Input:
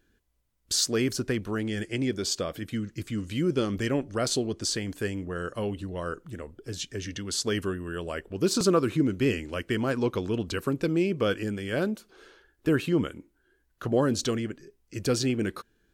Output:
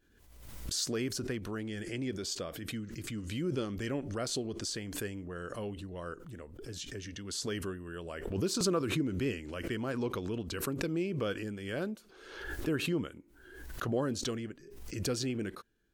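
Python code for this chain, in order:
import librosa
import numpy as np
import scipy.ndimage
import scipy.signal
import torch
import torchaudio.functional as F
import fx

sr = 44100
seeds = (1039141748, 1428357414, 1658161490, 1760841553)

y = fx.pre_swell(x, sr, db_per_s=52.0)
y = y * librosa.db_to_amplitude(-8.5)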